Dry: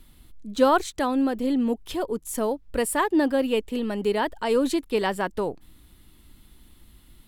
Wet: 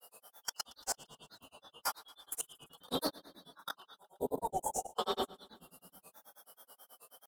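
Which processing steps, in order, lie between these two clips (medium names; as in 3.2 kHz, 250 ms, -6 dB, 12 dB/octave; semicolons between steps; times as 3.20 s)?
four frequency bands reordered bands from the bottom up 2413; pre-emphasis filter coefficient 0.97; peak limiter -24 dBFS, peak gain reduction 10.5 dB; reverberation RT60 1.0 s, pre-delay 3 ms, DRR -10 dB; compression 16:1, threshold -27 dBFS, peak gain reduction 10.5 dB; FFT filter 150 Hz 0 dB, 750 Hz +15 dB, 1.5 kHz -1 dB, 2.8 kHz -24 dB, 5.3 kHz -15 dB, 14 kHz -8 dB; one-sided clip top -39 dBFS; level held to a coarse grid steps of 23 dB; time-frequency box 3.98–4.91 s, 1–6.1 kHz -25 dB; granulator, grains 9.3 per s, pitch spread up and down by 3 st; feedback delay 114 ms, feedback 58%, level -22 dB; trim +15.5 dB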